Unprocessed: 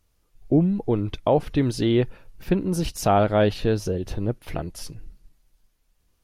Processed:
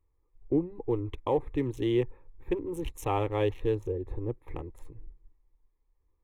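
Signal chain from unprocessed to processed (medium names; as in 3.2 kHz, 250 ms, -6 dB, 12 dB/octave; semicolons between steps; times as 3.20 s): local Wiener filter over 15 samples; static phaser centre 980 Hz, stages 8; trim -4 dB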